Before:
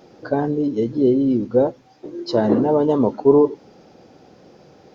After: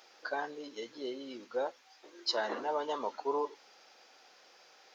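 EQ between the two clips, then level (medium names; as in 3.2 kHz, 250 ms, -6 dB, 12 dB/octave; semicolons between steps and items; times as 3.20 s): high-pass 1.4 kHz 12 dB/octave; 0.0 dB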